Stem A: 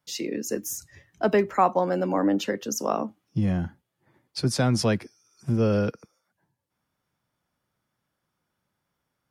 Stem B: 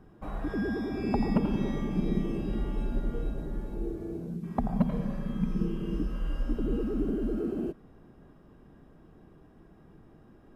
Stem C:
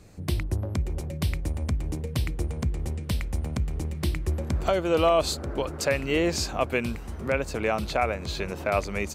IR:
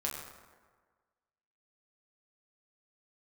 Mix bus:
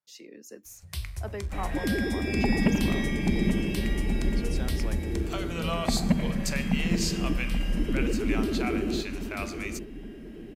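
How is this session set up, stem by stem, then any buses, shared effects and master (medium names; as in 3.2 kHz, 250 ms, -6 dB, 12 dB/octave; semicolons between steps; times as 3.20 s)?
-14.5 dB, 0.00 s, no send, no echo send, bass shelf 230 Hz -9 dB
+2.5 dB, 1.30 s, no send, echo send -9.5 dB, resonant high shelf 1.6 kHz +7.5 dB, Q 3
-3.5 dB, 0.65 s, send -6.5 dB, no echo send, amplifier tone stack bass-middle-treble 10-0-10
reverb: on, RT60 1.5 s, pre-delay 6 ms
echo: feedback delay 830 ms, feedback 50%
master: none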